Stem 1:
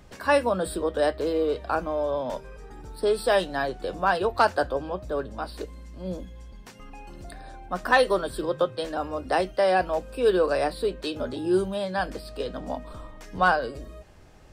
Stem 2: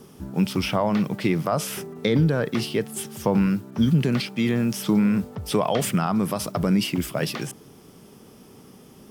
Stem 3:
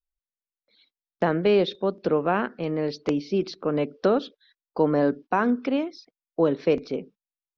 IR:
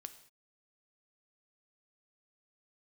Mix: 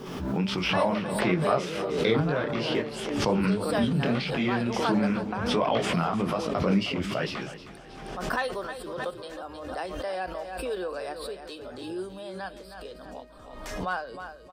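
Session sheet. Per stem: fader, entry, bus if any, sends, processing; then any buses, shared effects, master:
-9.5 dB, 0.45 s, no send, echo send -10 dB, none
+2.5 dB, 0.00 s, no send, echo send -14 dB, low-pass 3.7 kHz 12 dB/octave; detune thickener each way 48 cents
-10.5 dB, 0.00 s, no send, no echo send, peaking EQ 90 Hz -11.5 dB 2 oct; three bands compressed up and down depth 100%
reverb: none
echo: feedback delay 313 ms, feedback 36%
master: bass shelf 370 Hz -6.5 dB; swell ahead of each attack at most 41 dB/s

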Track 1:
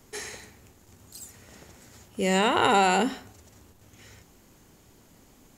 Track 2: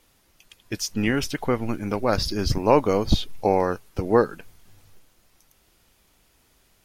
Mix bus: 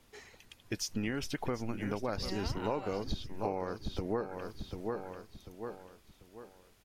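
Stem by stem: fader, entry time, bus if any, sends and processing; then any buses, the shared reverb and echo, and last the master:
-13.0 dB, 0.00 s, no send, no echo send, low-pass 5.4 kHz; reverb removal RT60 0.54 s
-3.5 dB, 0.00 s, no send, echo send -11.5 dB, none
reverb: none
echo: feedback delay 742 ms, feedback 36%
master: treble shelf 6.8 kHz -4.5 dB; compression 5:1, threshold -32 dBFS, peak gain reduction 15.5 dB

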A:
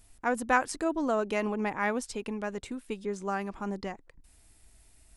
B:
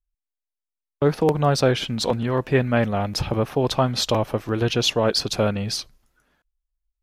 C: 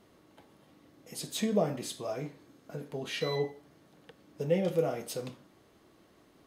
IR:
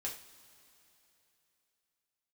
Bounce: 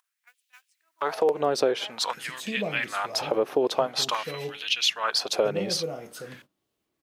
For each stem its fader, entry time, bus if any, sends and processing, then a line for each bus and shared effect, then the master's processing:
-12.0 dB, 0.00 s, bus A, no send, auto duck -7 dB, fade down 0.30 s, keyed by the second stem
-1.0 dB, 0.00 s, bus A, no send, upward compressor, threshold -29 dBFS
-3.5 dB, 1.05 s, no bus, no send, none
bus A: 0.0 dB, LFO high-pass sine 0.49 Hz 360–3000 Hz; compression 3:1, threshold -21 dBFS, peak gain reduction 9 dB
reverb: none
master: gate -51 dBFS, range -16 dB

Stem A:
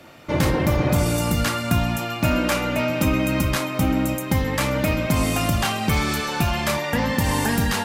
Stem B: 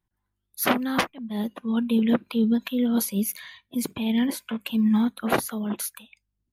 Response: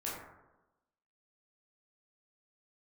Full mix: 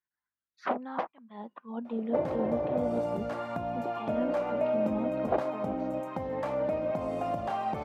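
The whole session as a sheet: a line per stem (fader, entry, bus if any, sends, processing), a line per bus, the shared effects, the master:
-2.0 dB, 1.85 s, no send, treble shelf 7.8 kHz +3.5 dB; compression, threshold -20 dBFS, peak gain reduction 5.5 dB
-3.5 dB, 0.00 s, no send, low-pass 5.7 kHz 24 dB/octave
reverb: none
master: bass shelf 480 Hz +8 dB; auto-wah 640–1700 Hz, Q 2.5, down, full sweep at -17 dBFS

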